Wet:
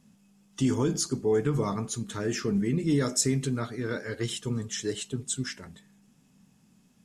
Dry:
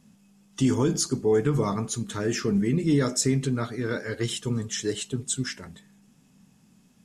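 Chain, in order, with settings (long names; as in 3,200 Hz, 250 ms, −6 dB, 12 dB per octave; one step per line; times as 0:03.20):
0:02.88–0:03.58: high-shelf EQ 8,700 Hz → 4,700 Hz +5.5 dB
level −3 dB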